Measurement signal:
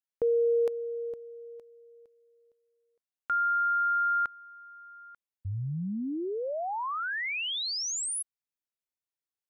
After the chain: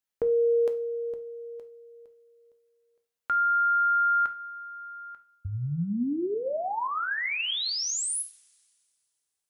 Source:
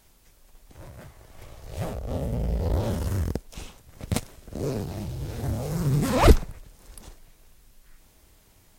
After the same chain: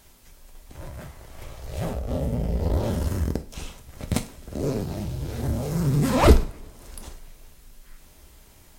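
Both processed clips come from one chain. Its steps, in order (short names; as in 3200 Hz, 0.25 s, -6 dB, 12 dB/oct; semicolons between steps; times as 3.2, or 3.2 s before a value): dynamic EQ 250 Hz, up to +3 dB, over -37 dBFS, Q 0.99; in parallel at -1 dB: compressor, threshold -39 dBFS; on the sum: two-slope reverb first 0.34 s, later 2.3 s, from -27 dB, DRR 6.5 dB; gain -1 dB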